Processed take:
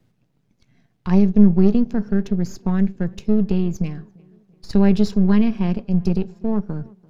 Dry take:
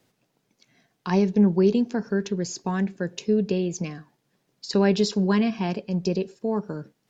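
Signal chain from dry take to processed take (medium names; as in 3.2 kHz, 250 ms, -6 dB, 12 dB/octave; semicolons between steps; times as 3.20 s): partial rectifier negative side -7 dB; tone controls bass +15 dB, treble -5 dB; tape echo 341 ms, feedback 54%, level -23.5 dB, low-pass 1.9 kHz; trim -1 dB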